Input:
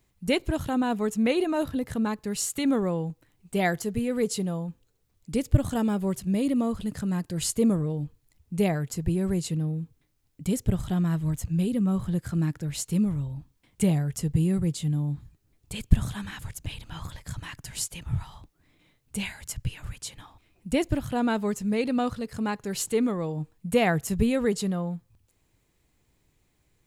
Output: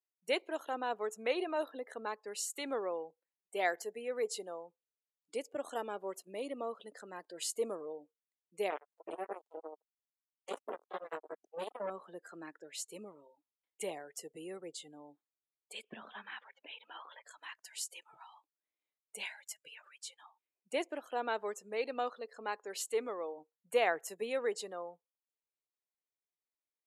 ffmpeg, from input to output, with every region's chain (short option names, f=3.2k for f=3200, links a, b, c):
-filter_complex "[0:a]asettb=1/sr,asplit=3[a][b][c];[a]atrim=end=8.704[d];[b]atrim=start=8.7:end=11.9,asetpts=PTS-STARTPTS,afade=t=in:d=0.004:c=qsin,afade=t=out:st=3.196:d=0.004:c=qsin,flanger=delay=18.5:depth=7.8:speed=3,acrusher=bits=3:mix=0:aa=0.5[e];[c]atrim=start=11.896[f];[d][e]acrossfade=d=0.004:c1=hsin:c2=qsin[g];[g][f]acrossfade=d=0.004:c1=qsin:c2=hsin,asettb=1/sr,asplit=3[h][i][j];[h]atrim=end=15.834[k];[i]atrim=start=15.83:end=17.22,asetpts=PTS-STARTPTS,afade=t=in:d=0.004:c=qsin,afade=t=out:st=1.386:d=0.004:c=qsin,lowpass=f=3.5k:w=0.5412,lowpass=f=3.5k:w=1.3066,equalizer=f=220:t=o:w=0.21:g=9,acompressor=mode=upward:threshold=-30dB:ratio=2.5:attack=3.2:release=140:knee=2.83:detection=peak[l];[j]atrim=start=17.216[m];[k][l]acrossfade=d=0.004:c1=hsin:c2=qsin[n];[n][m]acrossfade=d=0.004:c1=qsin:c2=hsin,highpass=f=420:w=0.5412,highpass=f=420:w=1.3066,afftdn=nr=24:nf=-47,highshelf=f=5.4k:g=-5.5,volume=-5.5dB"